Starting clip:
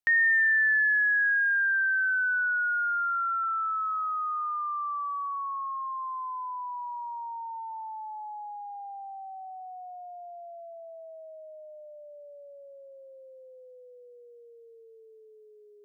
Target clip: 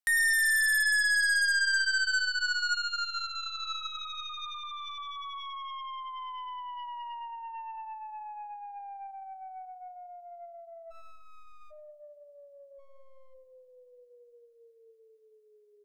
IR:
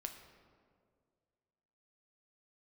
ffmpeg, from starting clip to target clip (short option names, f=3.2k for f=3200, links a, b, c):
-filter_complex "[0:a]highpass=720,asplit=3[a][b][c];[a]afade=t=out:st=12.78:d=0.02[d];[b]aeval=exprs='max(val(0),0)':c=same,afade=t=in:st=12.78:d=0.02,afade=t=out:st=13.33:d=0.02[e];[c]afade=t=in:st=13.33:d=0.02[f];[d][e][f]amix=inputs=3:normalize=0,asplit=2[g][h];[1:a]atrim=start_sample=2205,lowshelf=f=480:g=11,highshelf=f=2.1k:g=-8[i];[h][i]afir=irnorm=-1:irlink=0,volume=-6dB[j];[g][j]amix=inputs=2:normalize=0,asplit=3[k][l][m];[k]afade=t=out:st=10.9:d=0.02[n];[l]aeval=exprs='abs(val(0))':c=same,afade=t=in:st=10.9:d=0.02,afade=t=out:st=11.7:d=0.02[o];[m]afade=t=in:st=11.7:d=0.02[p];[n][o][p]amix=inputs=3:normalize=0,asplit=2[q][r];[r]adelay=101,lowpass=f=1.1k:p=1,volume=-11dB,asplit=2[s][t];[t]adelay=101,lowpass=f=1.1k:p=1,volume=0.43,asplit=2[u][v];[v]adelay=101,lowpass=f=1.1k:p=1,volume=0.43,asplit=2[w][x];[x]adelay=101,lowpass=f=1.1k:p=1,volume=0.43[y];[s][u][w][y]amix=inputs=4:normalize=0[z];[q][z]amix=inputs=2:normalize=0,aeval=exprs='0.158*(cos(1*acos(clip(val(0)/0.158,-1,1)))-cos(1*PI/2))+0.00447*(cos(4*acos(clip(val(0)/0.158,-1,1)))-cos(4*PI/2))+0.0178*(cos(6*acos(clip(val(0)/0.158,-1,1)))-cos(6*PI/2))+0.0562*(cos(7*acos(clip(val(0)/0.158,-1,1)))-cos(7*PI/2))+0.00447*(cos(8*acos(clip(val(0)/0.158,-1,1)))-cos(8*PI/2))':c=same,volume=-5.5dB"